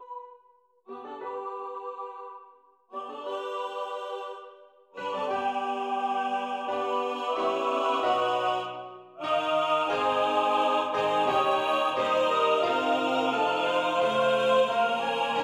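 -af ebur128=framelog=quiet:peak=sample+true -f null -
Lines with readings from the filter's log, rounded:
Integrated loudness:
  I:         -26.9 LUFS
  Threshold: -37.8 LUFS
Loudness range:
  LRA:        12.3 LU
  Threshold: -47.8 LUFS
  LRA low:   -37.2 LUFS
  LRA high:  -24.9 LUFS
Sample peak:
  Peak:      -12.7 dBFS
True peak:
  Peak:      -12.7 dBFS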